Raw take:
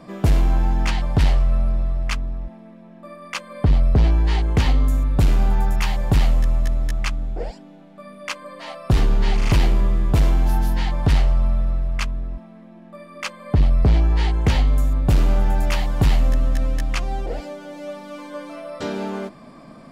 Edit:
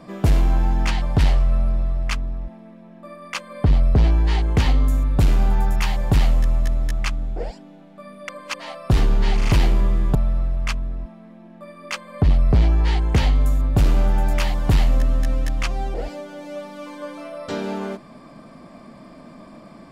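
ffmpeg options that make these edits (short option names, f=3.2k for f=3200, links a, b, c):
-filter_complex "[0:a]asplit=4[a][b][c][d];[a]atrim=end=8.292[e];[b]atrim=start=8.288:end=8.542,asetpts=PTS-STARTPTS,areverse[f];[c]atrim=start=8.538:end=10.152[g];[d]atrim=start=11.468[h];[e][f]acrossfade=d=0.004:c1=hsin:c2=hsin[i];[i][g]acrossfade=d=0.004:c1=hsin:c2=hsin[j];[j][h]acrossfade=d=0.004:c1=hsin:c2=hsin"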